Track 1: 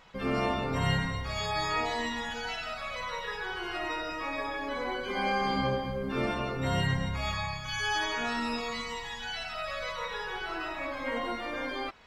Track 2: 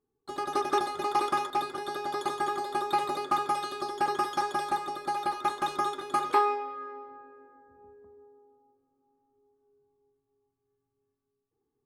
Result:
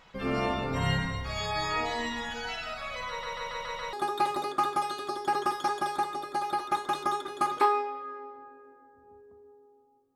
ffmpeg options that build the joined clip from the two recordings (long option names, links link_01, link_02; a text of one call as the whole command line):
ffmpeg -i cue0.wav -i cue1.wav -filter_complex "[0:a]apad=whole_dur=10.15,atrim=end=10.15,asplit=6[link_01][link_02][link_03][link_04][link_05][link_06];[link_01]atrim=end=3.232[link_07];[link_02]atrim=start=3.088:end=3.232[link_08];[link_03]atrim=start=3.088:end=3.232[link_09];[link_04]atrim=start=3.088:end=3.232[link_10];[link_05]atrim=start=3.088:end=3.232[link_11];[link_06]atrim=start=3.088:end=3.232[link_12];[1:a]atrim=start=2.658:end=8.88[link_13];[link_07][link_08]acrossfade=duration=0.004:curve1=hsin:curve2=hsin[link_14];[link_14][link_09]acrossfade=duration=0.004:curve1=hsin:curve2=hsin[link_15];[link_15][link_10]acrossfade=duration=0.004:curve1=hsin:curve2=hsin[link_16];[link_16][link_11]acrossfade=duration=0.004:curve1=hsin:curve2=hsin[link_17];[link_17][link_12]acrossfade=duration=0.004:curve1=hsin:curve2=hsin[link_18];[link_18][link_13]acrossfade=duration=0.004:curve1=hsin:curve2=hsin" out.wav